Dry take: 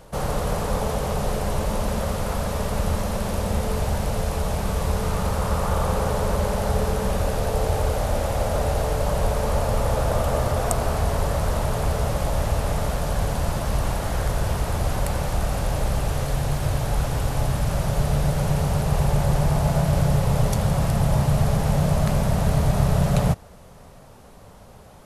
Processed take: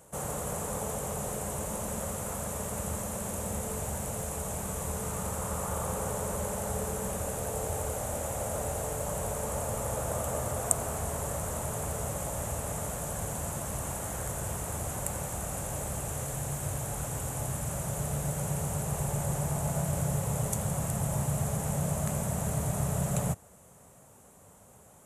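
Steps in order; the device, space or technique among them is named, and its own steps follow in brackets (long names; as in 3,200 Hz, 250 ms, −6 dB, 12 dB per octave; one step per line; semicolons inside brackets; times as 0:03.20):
budget condenser microphone (high-pass filter 81 Hz 12 dB per octave; high shelf with overshoot 6,000 Hz +8 dB, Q 3)
level −9.5 dB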